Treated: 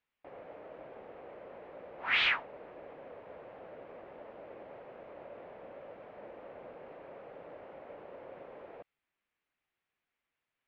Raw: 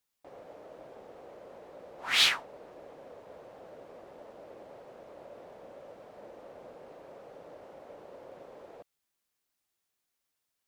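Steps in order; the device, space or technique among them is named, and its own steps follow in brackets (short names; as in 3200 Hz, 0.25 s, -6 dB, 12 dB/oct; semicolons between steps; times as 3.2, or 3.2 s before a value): overdriven synthesiser ladder filter (soft clip -22.5 dBFS, distortion -10 dB; ladder low-pass 3000 Hz, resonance 35%); gain +7.5 dB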